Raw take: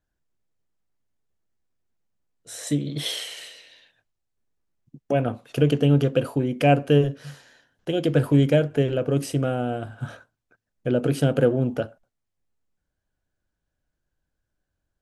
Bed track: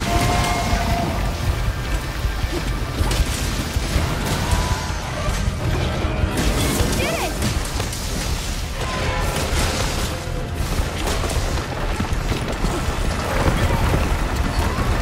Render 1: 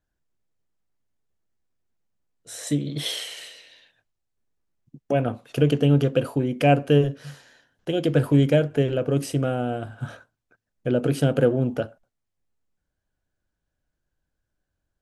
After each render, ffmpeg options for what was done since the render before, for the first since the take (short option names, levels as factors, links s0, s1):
-af anull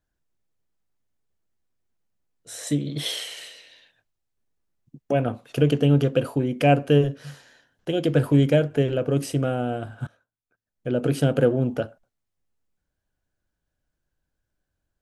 -filter_complex "[0:a]asplit=2[s0][s1];[s0]atrim=end=10.07,asetpts=PTS-STARTPTS,afade=t=out:st=10.066:d=0.004:c=hsin:silence=0.1[s2];[s1]atrim=start=10.07,asetpts=PTS-STARTPTS,afade=t=in:d=1:c=qua:silence=0.1[s3];[s2][s3]concat=n=2:v=0:a=1"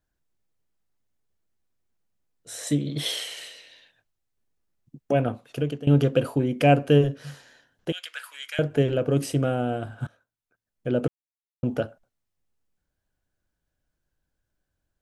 -filter_complex "[0:a]asettb=1/sr,asplit=3[s0][s1][s2];[s0]atrim=end=7.924[s3];[s1]atrim=start=7.92:end=8.59,asetpts=PTS-STARTPTS,afade=t=in:d=0.004:c=qsin,afade=t=out:st=0.666:d=0.004:c=qsin,highpass=f=1400:w=0.5412,highpass=f=1400:w=1.3066[s4];[s2]atrim=start=8.586[s5];[s3][s4]acrossfade=d=0.004:c1=hsin:c2=qsin[s6];[s6][s5]acrossfade=d=0.004:c1=qsin:c2=hsin,asplit=4[s7][s8][s9][s10];[s7]atrim=end=5.87,asetpts=PTS-STARTPTS,afade=t=out:st=5.21:d=0.66:silence=0.125893[s11];[s8]atrim=start=5.87:end=11.08,asetpts=PTS-STARTPTS,afade=t=in:d=0.004:c=hsin:silence=0.125893,afade=t=out:st=5.206:d=0.004:c=hsin[s12];[s9]atrim=start=11.08:end=11.63,asetpts=PTS-STARTPTS,volume=0[s13];[s10]atrim=start=11.63,asetpts=PTS-STARTPTS,afade=t=in:d=0.004:c=hsin[s14];[s11][s12][s13][s14]concat=n=4:v=0:a=1"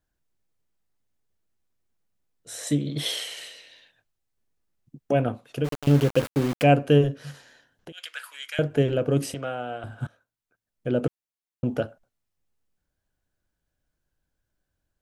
-filter_complex "[0:a]asplit=3[s0][s1][s2];[s0]afade=t=out:st=5.64:d=0.02[s3];[s1]aeval=exprs='val(0)*gte(abs(val(0)),0.0422)':c=same,afade=t=in:st=5.64:d=0.02,afade=t=out:st=6.62:d=0.02[s4];[s2]afade=t=in:st=6.62:d=0.02[s5];[s3][s4][s5]amix=inputs=3:normalize=0,asplit=3[s6][s7][s8];[s6]afade=t=out:st=7.31:d=0.02[s9];[s7]acompressor=threshold=0.0112:ratio=6:attack=3.2:release=140:knee=1:detection=peak,afade=t=in:st=7.31:d=0.02,afade=t=out:st=7.97:d=0.02[s10];[s8]afade=t=in:st=7.97:d=0.02[s11];[s9][s10][s11]amix=inputs=3:normalize=0,asettb=1/sr,asplit=3[s12][s13][s14];[s12]atrim=end=9.344[s15];[s13]atrim=start=9.34:end=9.84,asetpts=PTS-STARTPTS,afade=t=in:d=0.004:c=qsin,afade=t=out:st=0.496:d=0.004:c=qsin,acrossover=split=580 5500:gain=0.2 1 0.224[s16][s17][s18];[s16][s17][s18]amix=inputs=3:normalize=0[s19];[s14]atrim=start=9.836[s20];[s15][s19]acrossfade=d=0.004:c1=hsin:c2=qsin[s21];[s21][s20]acrossfade=d=0.004:c1=qsin:c2=hsin"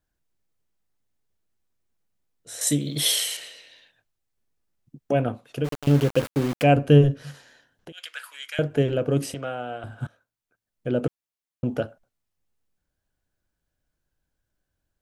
-filter_complex "[0:a]asettb=1/sr,asplit=3[s0][s1][s2];[s0]atrim=end=2.614[s3];[s1]atrim=start=2.61:end=3.37,asetpts=PTS-STARTPTS,afade=t=in:d=0.004:c=qsin,afade=t=out:st=0.756:d=0.004:c=qsin,aemphasis=mode=production:type=75kf[s4];[s2]atrim=start=3.366[s5];[s3][s4]acrossfade=d=0.004:c1=hsin:c2=qsin[s6];[s6][s5]acrossfade=d=0.004:c1=qsin:c2=hsin,asettb=1/sr,asplit=3[s7][s8][s9];[s7]atrim=end=6.764[s10];[s8]atrim=start=6.76:end=7.23,asetpts=PTS-STARTPTS,afade=t=in:d=0.004:c=qsin,afade=t=out:st=0.466:d=0.004:c=qsin,lowshelf=f=150:g=11[s11];[s9]atrim=start=7.226[s12];[s10][s11]acrossfade=d=0.004:c1=hsin:c2=qsin[s13];[s13][s12]acrossfade=d=0.004:c1=qsin:c2=hsin"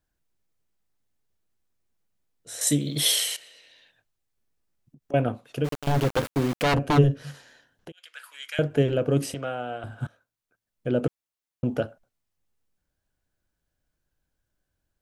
-filter_complex "[0:a]asettb=1/sr,asplit=3[s0][s1][s2];[s0]atrim=end=3.364[s3];[s1]atrim=start=3.36:end=5.14,asetpts=PTS-STARTPTS,afade=t=in:d=0.004:c=qsin,afade=t=out:st=1.776:d=0.004:c=qsin,acompressor=threshold=0.002:ratio=2:attack=3.2:release=140:knee=1:detection=peak[s4];[s2]atrim=start=5.136[s5];[s3][s4]acrossfade=d=0.004:c1=hsin:c2=qsin[s6];[s6][s5]acrossfade=d=0.004:c1=qsin:c2=hsin,asplit=3[s7][s8][s9];[s7]afade=t=out:st=5.68:d=0.02[s10];[s8]aeval=exprs='0.158*(abs(mod(val(0)/0.158+3,4)-2)-1)':c=same,afade=t=in:st=5.68:d=0.02,afade=t=out:st=6.97:d=0.02[s11];[s9]afade=t=in:st=6.97:d=0.02[s12];[s10][s11][s12]amix=inputs=3:normalize=0,asplit=2[s13][s14];[s13]atrim=end=7.92,asetpts=PTS-STARTPTS,afade=t=out:st=7.916:d=0.004:c=hsin:silence=0.112202[s15];[s14]atrim=start=7.92,asetpts=PTS-STARTPTS,afade=t=in:d=0.63:silence=0.112202[s16];[s15][s16]concat=n=2:v=0:a=1"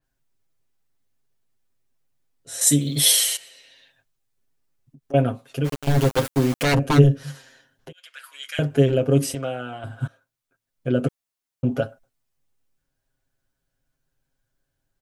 -af "aecho=1:1:7.5:0.85,adynamicequalizer=threshold=0.0112:dfrequency=5100:dqfactor=0.7:tfrequency=5100:tqfactor=0.7:attack=5:release=100:ratio=0.375:range=3:mode=boostabove:tftype=highshelf"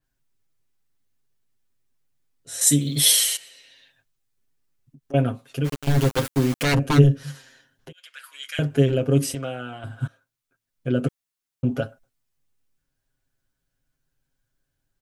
-af "equalizer=f=640:t=o:w=1.3:g=-4"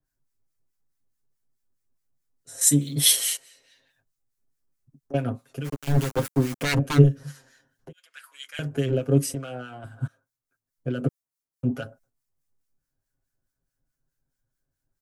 -filter_complex "[0:a]acrossover=split=1200[s0][s1];[s0]aeval=exprs='val(0)*(1-0.7/2+0.7/2*cos(2*PI*4.7*n/s))':c=same[s2];[s1]aeval=exprs='val(0)*(1-0.7/2-0.7/2*cos(2*PI*4.7*n/s))':c=same[s3];[s2][s3]amix=inputs=2:normalize=0,acrossover=split=240|3700[s4][s5][s6];[s5]adynamicsmooth=sensitivity=7:basefreq=2500[s7];[s4][s7][s6]amix=inputs=3:normalize=0"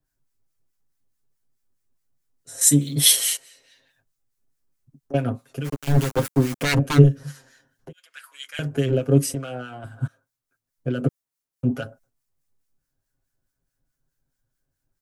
-af "volume=1.41,alimiter=limit=0.794:level=0:latency=1"